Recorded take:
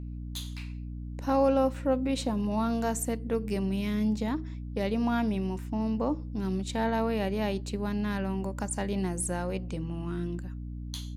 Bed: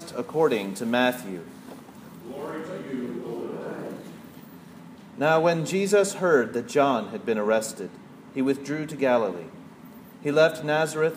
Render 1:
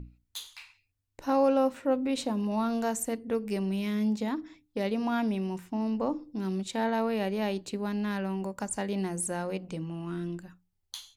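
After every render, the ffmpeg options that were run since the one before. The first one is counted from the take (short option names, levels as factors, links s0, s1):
-af "bandreject=f=60:t=h:w=6,bandreject=f=120:t=h:w=6,bandreject=f=180:t=h:w=6,bandreject=f=240:t=h:w=6,bandreject=f=300:t=h:w=6"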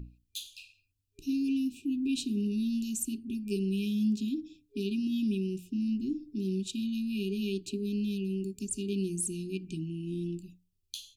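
-af "afftfilt=real='re*(1-between(b*sr/4096,410,2400))':imag='im*(1-between(b*sr/4096,410,2400))':win_size=4096:overlap=0.75"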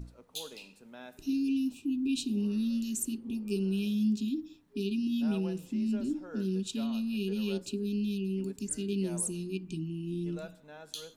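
-filter_complex "[1:a]volume=0.0501[s0];[0:a][s0]amix=inputs=2:normalize=0"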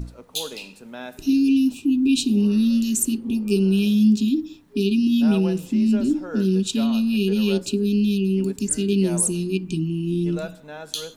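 -af "volume=3.98"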